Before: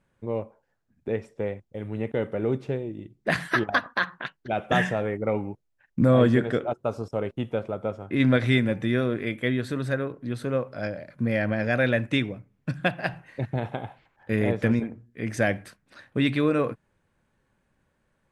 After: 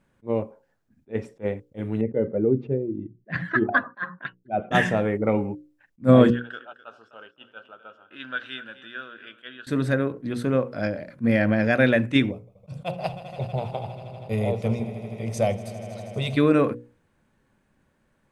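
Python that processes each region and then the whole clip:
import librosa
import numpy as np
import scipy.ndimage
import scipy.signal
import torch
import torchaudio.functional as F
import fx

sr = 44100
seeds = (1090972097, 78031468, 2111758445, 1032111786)

y = fx.chain(x, sr, fx.spec_expand(power=1.6),
    fx.lowpass(hz=3700.0, slope=12), at=(2.01, 4.71))
y = fx.chain(y, sr, fx.double_bandpass(hz=2100.0, octaves=0.92),
    fx.echo_feedback(ms=255, feedback_pct=31, wet_db=-16.0), at=(6.3, 9.67))
y = fx.chain(y, sr, fx.fixed_phaser(hz=690.0, stages=4),
    fx.echo_swell(ms=80, loudest=5, wet_db=-18), at=(12.31, 16.37))
y = fx.peak_eq(y, sr, hz=250.0, db=4.5, octaves=1.1)
y = fx.hum_notches(y, sr, base_hz=60, count=9)
y = fx.attack_slew(y, sr, db_per_s=420.0)
y = y * 10.0 ** (3.0 / 20.0)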